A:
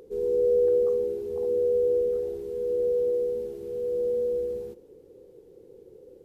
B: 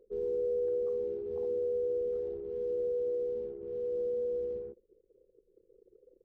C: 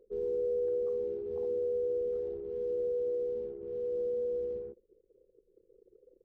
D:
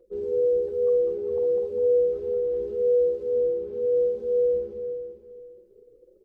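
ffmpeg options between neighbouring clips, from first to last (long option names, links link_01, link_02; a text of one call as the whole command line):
ffmpeg -i in.wav -af "acompressor=threshold=-26dB:ratio=3,anlmdn=0.631,volume=-4.5dB" out.wav
ffmpeg -i in.wav -af anull out.wav
ffmpeg -i in.wav -filter_complex "[0:a]asplit=2[link_01][link_02];[link_02]aecho=0:1:201|402|603|804|1005|1206|1407|1608:0.596|0.334|0.187|0.105|0.0586|0.0328|0.0184|0.0103[link_03];[link_01][link_03]amix=inputs=2:normalize=0,asplit=2[link_04][link_05];[link_05]adelay=3.7,afreqshift=2[link_06];[link_04][link_06]amix=inputs=2:normalize=1,volume=8dB" out.wav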